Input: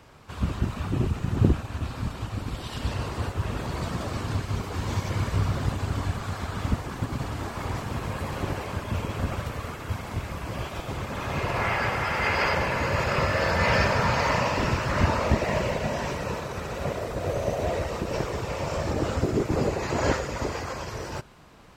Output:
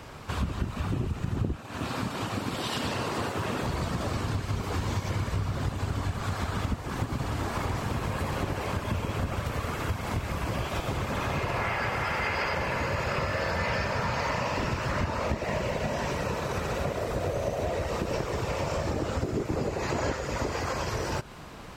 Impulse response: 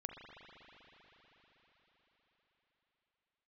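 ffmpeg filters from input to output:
-filter_complex "[0:a]asettb=1/sr,asplit=3[a][b][c];[a]atrim=end=1.564[d];[b]atrim=start=1.56:end=3.63,asetpts=PTS-STARTPTS,afade=t=in:d=0.004:c=qsin,afade=t=out:st=2.066:d=0.004:c=qsin,highpass=180[e];[c]atrim=start=3.626[f];[d][e]acrossfade=d=0.004:c1=hsin:c2=qsin[g];[g][f]acrossfade=d=0.004:c1=qsin:c2=hsin,acompressor=threshold=-35dB:ratio=6,volume=8dB"

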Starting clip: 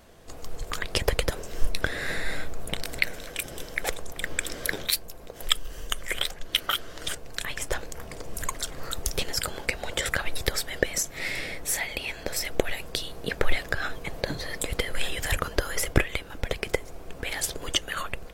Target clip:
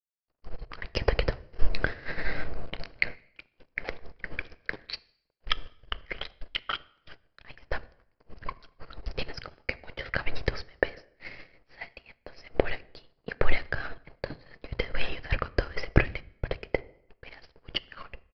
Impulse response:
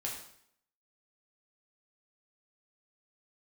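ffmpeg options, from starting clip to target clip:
-filter_complex "[0:a]aeval=exprs='sgn(val(0))*max(abs(val(0))-0.0141,0)':c=same,aresample=11025,aresample=44100,equalizer=f=3.6k:w=5:g=-12.5,agate=range=-33dB:threshold=-26dB:ratio=3:detection=peak,asplit=2[a][b];[1:a]atrim=start_sample=2205,lowshelf=f=360:g=9.5[c];[b][c]afir=irnorm=-1:irlink=0,volume=-18.5dB[d];[a][d]amix=inputs=2:normalize=0"

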